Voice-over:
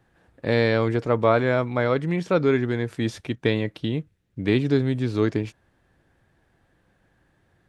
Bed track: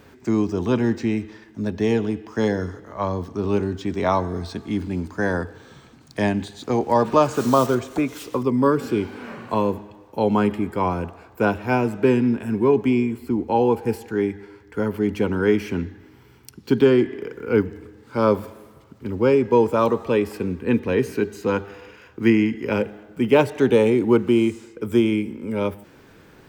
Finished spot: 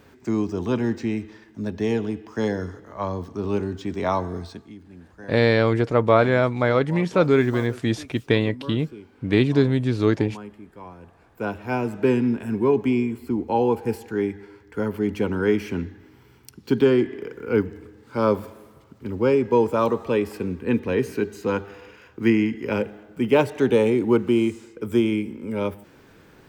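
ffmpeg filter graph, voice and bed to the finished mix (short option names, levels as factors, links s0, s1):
-filter_complex "[0:a]adelay=4850,volume=1.33[s0];[1:a]volume=5.01,afade=t=out:st=4.35:d=0.4:silence=0.158489,afade=t=in:st=10.99:d=1.11:silence=0.141254[s1];[s0][s1]amix=inputs=2:normalize=0"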